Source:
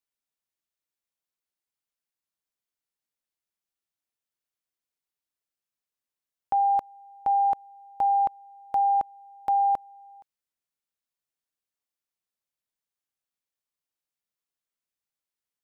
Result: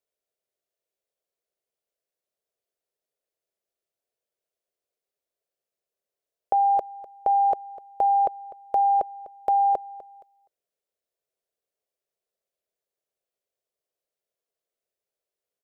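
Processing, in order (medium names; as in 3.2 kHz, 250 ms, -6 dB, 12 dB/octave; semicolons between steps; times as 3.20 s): high-order bell 510 Hz +14.5 dB 1.1 oct; delay 250 ms -17 dB; trim -1.5 dB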